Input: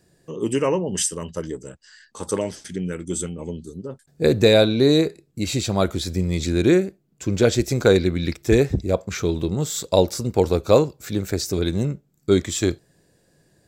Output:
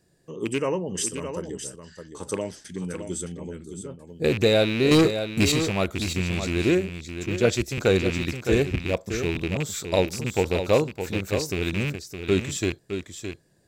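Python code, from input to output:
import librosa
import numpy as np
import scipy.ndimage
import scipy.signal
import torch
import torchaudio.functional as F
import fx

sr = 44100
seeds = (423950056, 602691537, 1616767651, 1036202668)

p1 = fx.rattle_buzz(x, sr, strikes_db=-21.0, level_db=-14.0)
p2 = fx.leveller(p1, sr, passes=3, at=(4.91, 5.52))
p3 = p2 + fx.echo_single(p2, sr, ms=614, db=-8.5, dry=0)
p4 = fx.band_widen(p3, sr, depth_pct=100, at=(7.26, 7.78))
y = p4 * 10.0 ** (-5.0 / 20.0)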